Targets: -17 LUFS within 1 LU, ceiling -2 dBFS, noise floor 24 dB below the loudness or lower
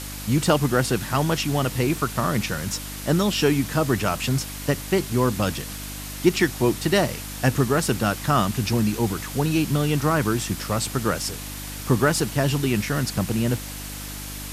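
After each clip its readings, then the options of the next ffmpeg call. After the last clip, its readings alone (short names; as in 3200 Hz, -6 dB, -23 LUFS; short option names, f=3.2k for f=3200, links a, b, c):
hum 50 Hz; harmonics up to 300 Hz; hum level -34 dBFS; noise floor -34 dBFS; noise floor target -48 dBFS; loudness -23.5 LUFS; peak -5.0 dBFS; loudness target -17.0 LUFS
-> -af "bandreject=f=50:t=h:w=4,bandreject=f=100:t=h:w=4,bandreject=f=150:t=h:w=4,bandreject=f=200:t=h:w=4,bandreject=f=250:t=h:w=4,bandreject=f=300:t=h:w=4"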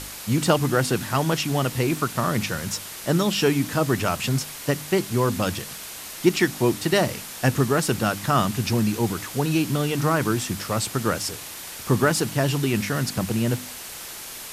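hum none; noise floor -37 dBFS; noise floor target -48 dBFS
-> -af "afftdn=nr=11:nf=-37"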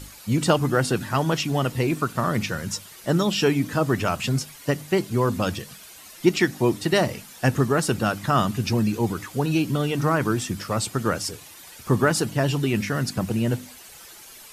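noise floor -45 dBFS; noise floor target -48 dBFS
-> -af "afftdn=nr=6:nf=-45"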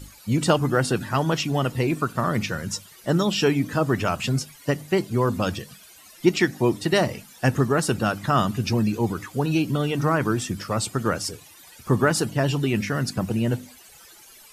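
noise floor -49 dBFS; loudness -24.0 LUFS; peak -5.5 dBFS; loudness target -17.0 LUFS
-> -af "volume=7dB,alimiter=limit=-2dB:level=0:latency=1"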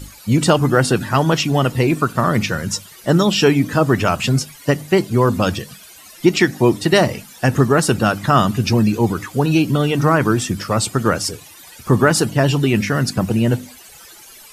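loudness -17.0 LUFS; peak -2.0 dBFS; noise floor -42 dBFS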